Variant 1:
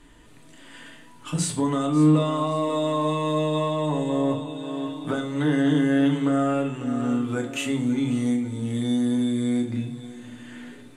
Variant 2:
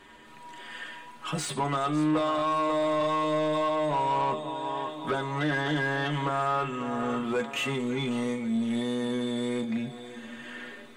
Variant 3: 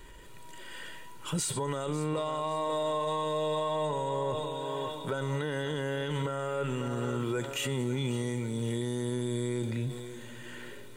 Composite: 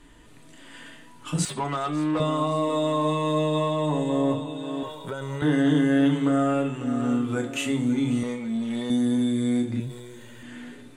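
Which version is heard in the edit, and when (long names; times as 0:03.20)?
1
0:01.45–0:02.20: punch in from 2
0:04.83–0:05.42: punch in from 3
0:08.23–0:08.90: punch in from 2
0:09.80–0:10.43: punch in from 3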